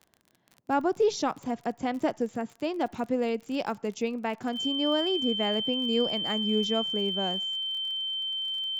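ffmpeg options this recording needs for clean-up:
ffmpeg -i in.wav -af "adeclick=threshold=4,bandreject=frequency=3100:width=30" out.wav

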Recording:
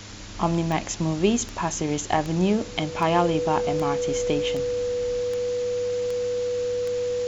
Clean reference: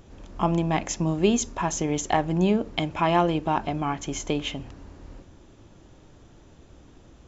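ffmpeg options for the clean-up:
ffmpeg -i in.wav -af "adeclick=threshold=4,bandreject=frequency=101.8:width_type=h:width=4,bandreject=frequency=203.6:width_type=h:width=4,bandreject=frequency=305.4:width_type=h:width=4,bandreject=frequency=490:width=30,afwtdn=0.011" out.wav

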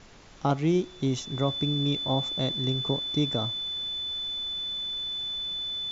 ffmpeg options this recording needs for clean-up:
ffmpeg -i in.wav -af "bandreject=frequency=3500:width=30,afftdn=noise_reduction=30:noise_floor=-43" out.wav

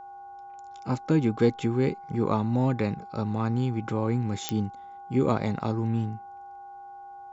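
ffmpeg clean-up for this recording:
ffmpeg -i in.wav -af "adeclick=threshold=4,bandreject=frequency=366.5:width_type=h:width=4,bandreject=frequency=733:width_type=h:width=4,bandreject=frequency=1099.5:width_type=h:width=4,bandreject=frequency=1466:width_type=h:width=4,bandreject=frequency=800:width=30" out.wav

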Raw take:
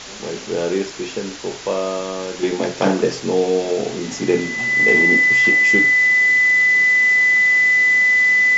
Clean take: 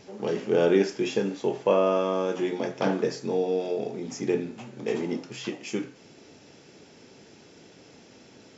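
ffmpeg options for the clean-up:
ffmpeg -i in.wav -af "bandreject=frequency=2000:width=30,afwtdn=0.028,asetnsamples=nb_out_samples=441:pad=0,asendcmd='2.43 volume volume -8.5dB',volume=0dB" out.wav

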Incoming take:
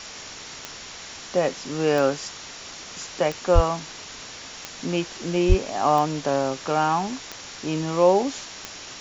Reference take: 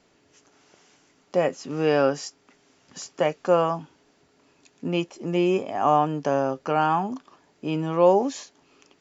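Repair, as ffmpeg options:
ffmpeg -i in.wav -filter_complex "[0:a]adeclick=threshold=4,bandreject=frequency=5600:width=30,asplit=3[link_01][link_02][link_03];[link_01]afade=type=out:start_time=3.54:duration=0.02[link_04];[link_02]highpass=frequency=140:width=0.5412,highpass=frequency=140:width=1.3066,afade=type=in:start_time=3.54:duration=0.02,afade=type=out:start_time=3.66:duration=0.02[link_05];[link_03]afade=type=in:start_time=3.66:duration=0.02[link_06];[link_04][link_05][link_06]amix=inputs=3:normalize=0,asplit=3[link_07][link_08][link_09];[link_07]afade=type=out:start_time=5.48:duration=0.02[link_10];[link_08]highpass=frequency=140:width=0.5412,highpass=frequency=140:width=1.3066,afade=type=in:start_time=5.48:duration=0.02,afade=type=out:start_time=5.6:duration=0.02[link_11];[link_09]afade=type=in:start_time=5.6:duration=0.02[link_12];[link_10][link_11][link_12]amix=inputs=3:normalize=0,afwtdn=0.018" out.wav

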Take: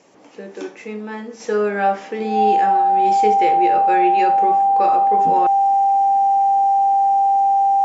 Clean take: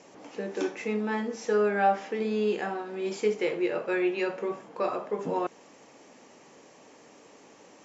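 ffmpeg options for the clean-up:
ffmpeg -i in.wav -af "bandreject=frequency=790:width=30,asetnsamples=nb_out_samples=441:pad=0,asendcmd='1.4 volume volume -5.5dB',volume=0dB" out.wav

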